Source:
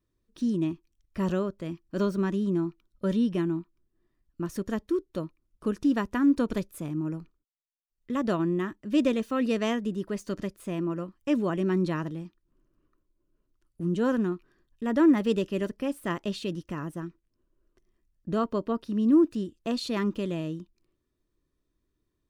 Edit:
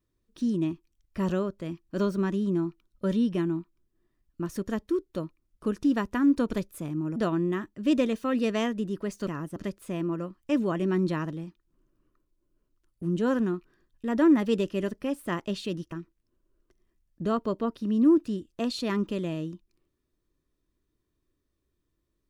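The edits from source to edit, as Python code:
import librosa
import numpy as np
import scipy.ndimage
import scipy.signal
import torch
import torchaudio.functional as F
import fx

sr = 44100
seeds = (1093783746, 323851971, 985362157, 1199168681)

y = fx.edit(x, sr, fx.cut(start_s=7.16, length_s=1.07),
    fx.move(start_s=16.7, length_s=0.29, to_s=10.34), tone=tone)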